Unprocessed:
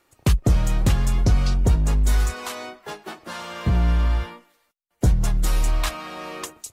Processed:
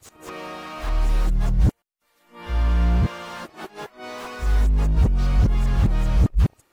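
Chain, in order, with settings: whole clip reversed; slew limiter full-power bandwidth 40 Hz

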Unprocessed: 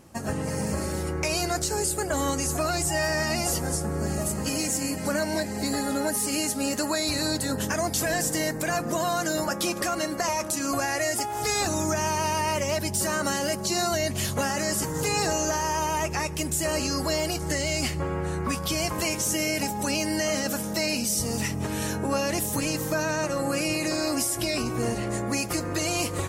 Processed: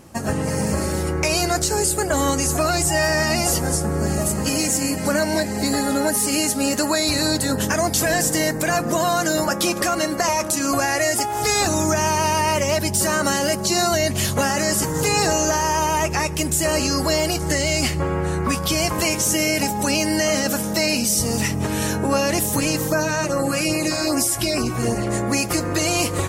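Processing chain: 22.87–25.07 LFO notch sine 2.5 Hz 330–3700 Hz; gain +6.5 dB

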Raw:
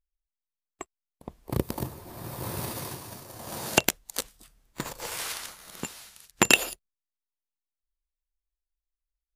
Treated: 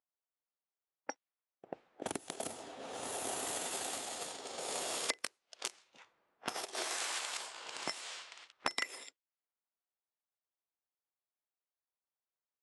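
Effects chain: HPF 620 Hz 12 dB/oct; compressor 6:1, threshold -39 dBFS, peak gain reduction 24 dB; low-pass opened by the level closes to 1600 Hz, open at -41 dBFS; speed mistake 45 rpm record played at 33 rpm; gain +3.5 dB

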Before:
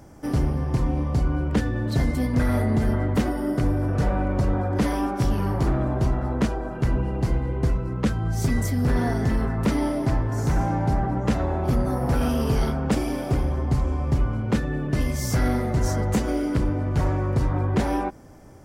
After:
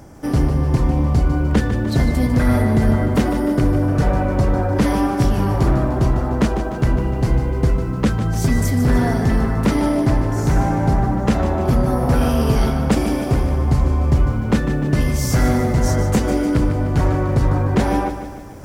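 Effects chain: reverse; upward compressor, threshold -38 dBFS; reverse; lo-fi delay 0.15 s, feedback 55%, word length 9-bit, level -10 dB; gain +5.5 dB

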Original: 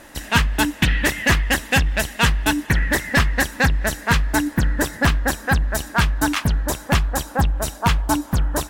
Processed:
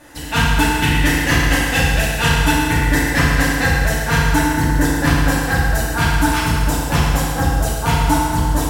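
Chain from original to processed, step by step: FDN reverb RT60 2.2 s, low-frequency decay 0.8×, high-frequency decay 0.8×, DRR -8.5 dB; gain -5.5 dB

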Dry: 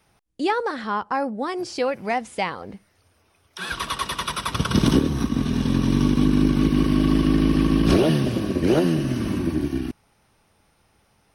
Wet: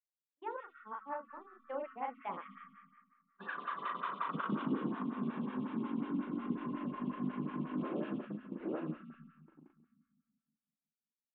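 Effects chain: Doppler pass-by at 4.46, 21 m/s, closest 12 m; Chebyshev band-pass 170–3400 Hz, order 4; notches 60/120/180/240/300/360/420/480 Hz; gate -39 dBFS, range -46 dB; bell 1100 Hz +7 dB 0.79 oct; reverse; compressor 6:1, threshold -36 dBFS, peak gain reduction 19.5 dB; reverse; air absorption 360 m; doubler 39 ms -3 dB; on a send at -5.5 dB: brick-wall FIR band-stop 270–1100 Hz + reverb RT60 1.9 s, pre-delay 90 ms; on the sum: photocell phaser 5.5 Hz; gain +2.5 dB

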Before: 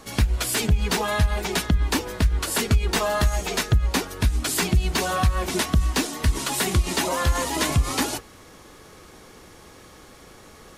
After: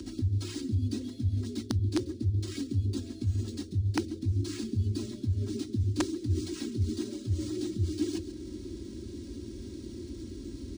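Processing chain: reverse; compressor 6:1, threshold -32 dBFS, peak gain reduction 17 dB; reverse; tilt shelf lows +6 dB, about 750 Hz; on a send: tape echo 0.139 s, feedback 37%, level -8.5 dB, low-pass 3900 Hz; on the sum: upward compressor, threshold -33 dBFS; elliptic band-stop 320–4000 Hz, stop band 50 dB; frequency shift +42 Hz; comb 3.3 ms, depth 98%; wrapped overs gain 18 dB; decimation joined by straight lines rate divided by 3×; gain -1 dB

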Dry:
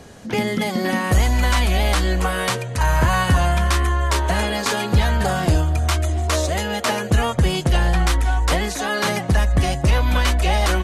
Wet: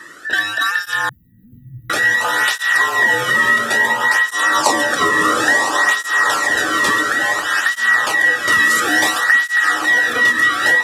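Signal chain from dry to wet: band inversion scrambler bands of 2000 Hz; in parallel at -7 dB: one-sided clip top -20.5 dBFS; 4.3–5.11 on the sum: ten-band EQ 125 Hz +5 dB, 250 Hz +6 dB, 500 Hz +9 dB, 1000 Hz +11 dB, 2000 Hz -7 dB, 4000 Hz +5 dB, 8000 Hz +9 dB; on a send: diffused feedback echo 0.917 s, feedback 45%, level -3.5 dB; on the sum: compressor, threshold -13 dBFS, peak gain reduction 7.5 dB; 1.09–1.9 inverse Chebyshev band-stop 570–9500 Hz, stop band 60 dB; 8.52–9.24 high shelf 5200 Hz +7 dB; tape flanging out of phase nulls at 0.58 Hz, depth 1.4 ms; gain +4 dB

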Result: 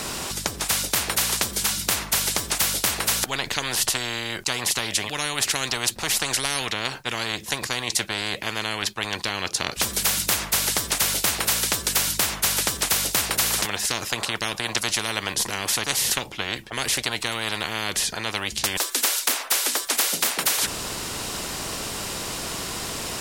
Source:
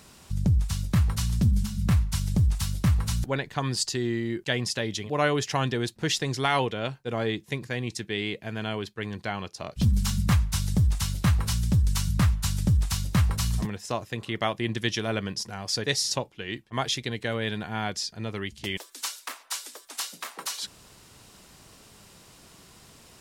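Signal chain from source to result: spectral compressor 10:1; gain +8 dB

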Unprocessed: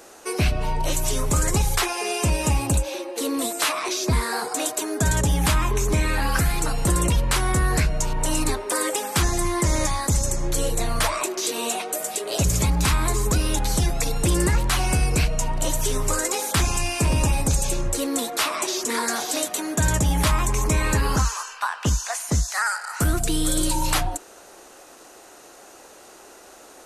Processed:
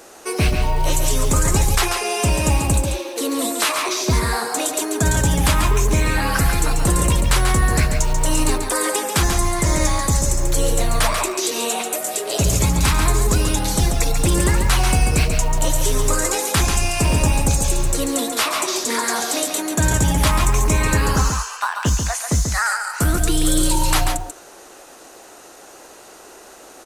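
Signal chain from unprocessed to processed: echo 0.139 s -6 dB; short-mantissa float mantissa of 4-bit; gain +3 dB

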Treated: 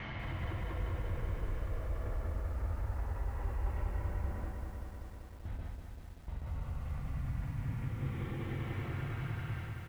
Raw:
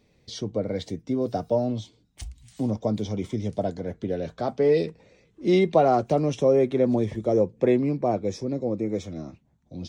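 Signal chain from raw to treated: block floating point 3-bit; Paulstretch 31×, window 0.05 s, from 2.2; reverse; compressor 6:1, threshold -43 dBFS, peak gain reduction 13.5 dB; reverse; gate with hold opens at -43 dBFS; LPF 1900 Hz 24 dB/oct; notches 60/120/180/240/300/360/420 Hz; on a send: echo 0.491 s -23 dB; on the sum: limiter -47.5 dBFS, peak gain reduction 11 dB; lo-fi delay 0.193 s, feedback 80%, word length 13-bit, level -5 dB; gain +15.5 dB

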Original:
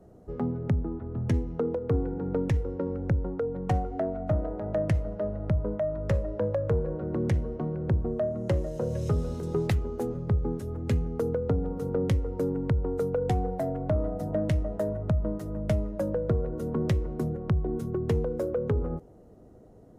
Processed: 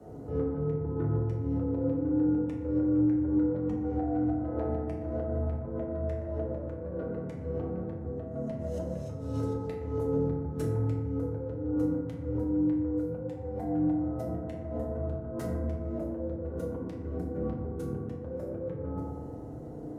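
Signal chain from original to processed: negative-ratio compressor -37 dBFS, ratio -1; frequency shift +26 Hz; FDN reverb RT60 1.6 s, low-frequency decay 1.2×, high-frequency decay 0.3×, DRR -4 dB; gain -4.5 dB

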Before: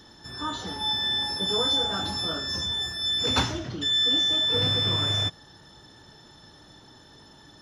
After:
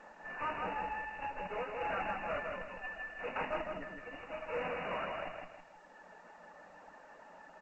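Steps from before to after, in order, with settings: reverb removal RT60 1.4 s; Chebyshev high-pass 170 Hz, order 6; resonant low shelf 450 Hz -7 dB, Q 3; notches 50/100/150/200/250 Hz; limiter -23 dBFS, peak gain reduction 10 dB; added harmonics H 3 -32 dB, 4 -43 dB, 5 -12 dB, 8 -11 dB, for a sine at -23 dBFS; brick-wall FIR low-pass 2900 Hz; feedback echo 0.16 s, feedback 39%, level -4 dB; gain -5.5 dB; A-law 128 kbps 16000 Hz

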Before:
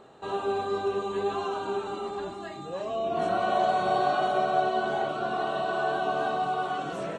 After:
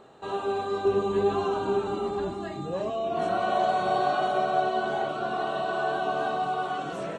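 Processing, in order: 0.85–2.9 low shelf 400 Hz +10 dB

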